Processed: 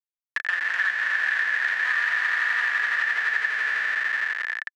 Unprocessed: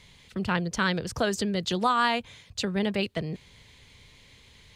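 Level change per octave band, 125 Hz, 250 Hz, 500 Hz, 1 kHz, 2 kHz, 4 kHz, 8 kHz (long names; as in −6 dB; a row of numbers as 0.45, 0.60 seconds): below −35 dB, below −30 dB, below −15 dB, −5.0 dB, +14.0 dB, −3.0 dB, can't be measured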